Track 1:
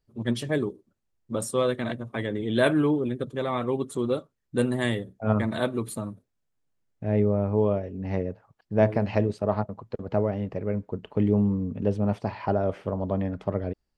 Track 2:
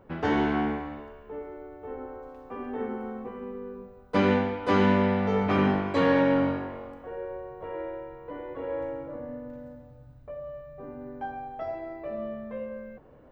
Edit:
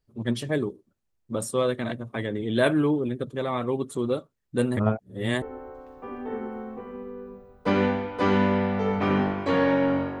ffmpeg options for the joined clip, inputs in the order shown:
-filter_complex "[0:a]apad=whole_dur=10.2,atrim=end=10.2,asplit=2[a][b];[a]atrim=end=4.772[c];[b]atrim=start=4.768:end=5.422,asetpts=PTS-STARTPTS,areverse[d];[1:a]atrim=start=1.898:end=6.68[e];[c][d]acrossfade=d=0.004:c1=hsin:c2=hsin[f];[f][e]acrossfade=d=0.004:c1=hsin:c2=hsin"

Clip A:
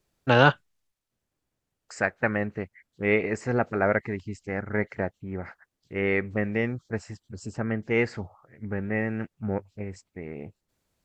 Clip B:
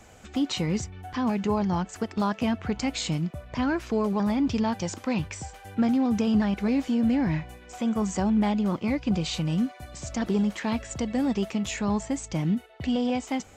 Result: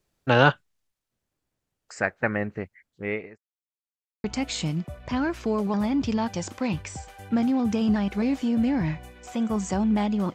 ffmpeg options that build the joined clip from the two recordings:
-filter_complex "[0:a]apad=whole_dur=10.34,atrim=end=10.34,asplit=2[a][b];[a]atrim=end=3.38,asetpts=PTS-STARTPTS,afade=t=out:st=2.54:d=0.84:c=qsin[c];[b]atrim=start=3.38:end=4.24,asetpts=PTS-STARTPTS,volume=0[d];[1:a]atrim=start=2.7:end=8.8,asetpts=PTS-STARTPTS,afade=t=in:d=0.004:c=hsin[e];[c][d][e]concat=n=3:v=0:a=1"

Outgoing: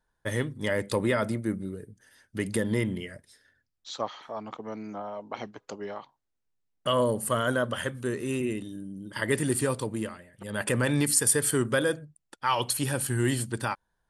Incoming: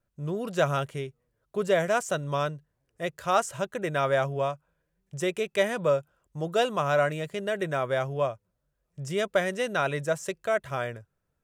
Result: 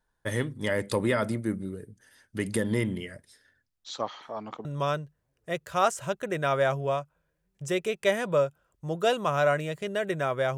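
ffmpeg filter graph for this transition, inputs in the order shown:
-filter_complex "[0:a]apad=whole_dur=10.57,atrim=end=10.57,atrim=end=4.652[a];[1:a]atrim=start=2.168:end=8.09[b];[a][b]acrossfade=d=0.004:c1=hsin:c2=hsin"

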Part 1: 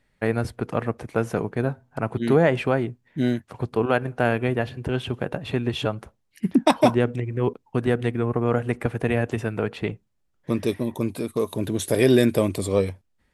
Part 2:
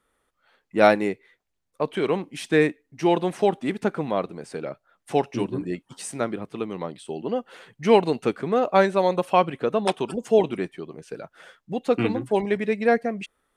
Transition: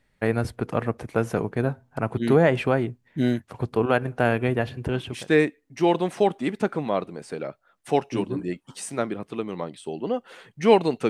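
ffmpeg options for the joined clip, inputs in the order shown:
-filter_complex "[0:a]apad=whole_dur=11.09,atrim=end=11.09,atrim=end=5.31,asetpts=PTS-STARTPTS[a];[1:a]atrim=start=2.11:end=8.31,asetpts=PTS-STARTPTS[b];[a][b]acrossfade=d=0.42:c1=tri:c2=tri"

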